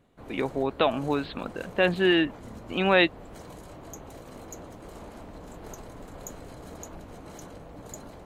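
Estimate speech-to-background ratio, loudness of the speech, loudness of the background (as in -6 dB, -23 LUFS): 19.0 dB, -25.5 LUFS, -44.5 LUFS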